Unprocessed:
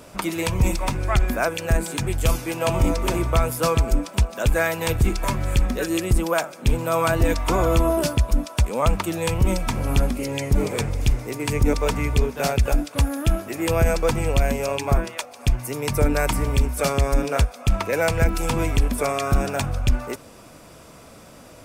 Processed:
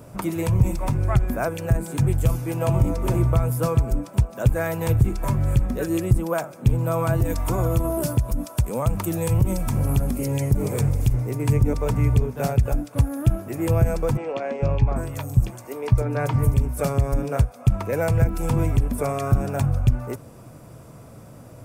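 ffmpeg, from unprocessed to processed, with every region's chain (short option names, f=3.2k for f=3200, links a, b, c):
-filter_complex "[0:a]asettb=1/sr,asplit=3[a][b][c];[a]atrim=end=7.154[d];[b]atrim=start=7.15:end=11.14,asetpts=PTS-STARTPTS,afade=t=in:d=0.004:c=qsin,afade=t=out:st=3.986:d=0.004:c=qsin,highshelf=f=5.5k:g=9,acompressor=threshold=-19dB:ratio=5:attack=3.2:release=140:knee=1:detection=peak[e];[c]atrim=start=11.136[f];[d][e]acrossfade=d=0.004:c1=hsin:c2=qsin[g];[g][f]acrossfade=d=0.004:c1=qsin:c2=hsin,asettb=1/sr,asplit=3[h][i][j];[h]atrim=end=14.174[k];[i]atrim=start=14.17:end=16.54,asetpts=PTS-STARTPTS,afade=t=in:d=0.004:c=qsin,afade=t=out:st=2.366:d=0.004:c=qsin,asplit=2[l][m];[m]adelay=18,volume=-13.5dB[n];[l][n]amix=inputs=2:normalize=0,atrim=end_sample=104517,acrossover=split=280|4900[o][p][q];[o]adelay=450[r];[q]adelay=790[s];[r][p][s]amix=inputs=3:normalize=0,atrim=end_sample=104517[t];[j]atrim=start=16.536[u];[k][t]acrossfade=d=0.004:c1=hsin:c2=qsin[v];[v][u]acrossfade=d=0.004:c1=qsin:c2=hsin,equalizer=f=3.6k:t=o:w=2.5:g=-10.5,alimiter=limit=-14dB:level=0:latency=1:release=238,equalizer=f=120:t=o:w=0.76:g=11.5"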